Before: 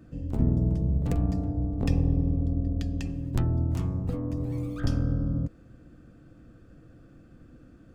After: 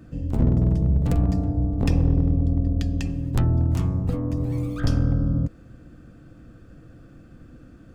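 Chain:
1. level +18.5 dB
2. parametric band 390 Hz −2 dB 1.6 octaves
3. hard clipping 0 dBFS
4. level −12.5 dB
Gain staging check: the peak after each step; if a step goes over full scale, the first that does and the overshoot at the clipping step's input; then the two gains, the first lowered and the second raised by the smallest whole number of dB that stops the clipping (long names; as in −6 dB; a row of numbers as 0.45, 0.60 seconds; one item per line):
+6.5, +6.0, 0.0, −12.5 dBFS
step 1, 6.0 dB
step 1 +12.5 dB, step 4 −6.5 dB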